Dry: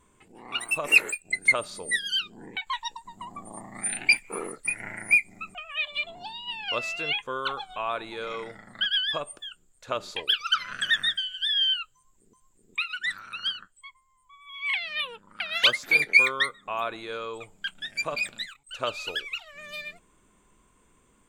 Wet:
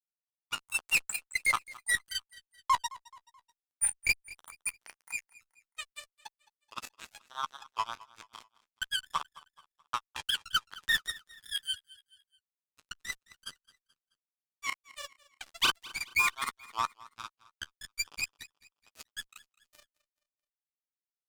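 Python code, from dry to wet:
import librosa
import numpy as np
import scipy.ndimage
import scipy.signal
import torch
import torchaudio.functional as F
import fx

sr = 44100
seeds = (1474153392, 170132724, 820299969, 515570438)

p1 = scipy.signal.sosfilt(scipy.signal.ellip(4, 1.0, 40, 890.0, 'highpass', fs=sr, output='sos'), x)
p2 = fx.band_shelf(p1, sr, hz=2500.0, db=-9.5, octaves=1.7)
p3 = fx.tremolo_shape(p2, sr, shape='saw_up', hz=5.1, depth_pct=100)
p4 = fx.fuzz(p3, sr, gain_db=32.0, gate_db=-39.0)
p5 = fx.granulator(p4, sr, seeds[0], grain_ms=100.0, per_s=20.0, spray_ms=27.0, spread_st=0)
p6 = fx.doubler(p5, sr, ms=12.0, db=-13.5)
p7 = p6 + fx.echo_feedback(p6, sr, ms=215, feedback_pct=44, wet_db=-20.5, dry=0)
y = p7 * 10.0 ** (-6.5 / 20.0)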